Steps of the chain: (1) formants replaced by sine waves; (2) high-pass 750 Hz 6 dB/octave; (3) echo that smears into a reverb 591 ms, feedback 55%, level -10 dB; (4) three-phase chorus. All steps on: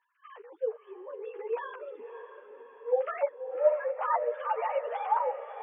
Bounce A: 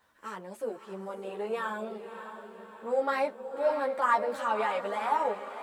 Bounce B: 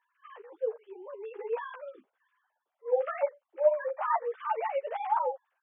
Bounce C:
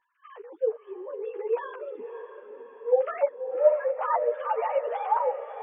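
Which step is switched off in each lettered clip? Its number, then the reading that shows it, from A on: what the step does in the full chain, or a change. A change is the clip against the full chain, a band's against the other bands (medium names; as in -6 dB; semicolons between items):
1, crest factor change -2.0 dB; 3, momentary loudness spread change -2 LU; 2, loudness change +3.5 LU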